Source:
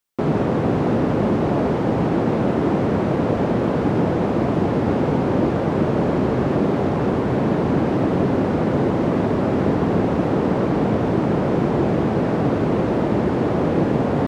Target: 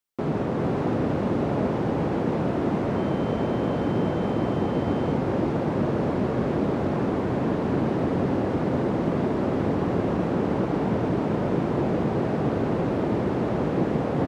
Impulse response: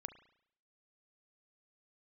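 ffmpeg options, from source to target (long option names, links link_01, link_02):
-filter_complex "[0:a]aecho=1:1:403:0.562,asettb=1/sr,asplit=3[link_01][link_02][link_03];[link_01]atrim=end=2.964[link_04];[link_02]atrim=start=2.96:end=5.13,asetpts=PTS-STARTPTS,afade=type=in:duration=0.004:curve=qsin,afade=type=out:start_time=2.166:duration=0.004:curve=qsin,aeval=exprs='val(0)+0.00562*sin(2*PI*3100*n/s)':channel_layout=same[link_05];[link_03]atrim=start=5.126[link_06];[link_04][link_05]acrossfade=duration=0.004:curve1=hsin:curve2=qsin[link_07];[link_07][link_06]acrossfade=duration=0.004:curve1=qsin:curve2=hsin,volume=-6.5dB"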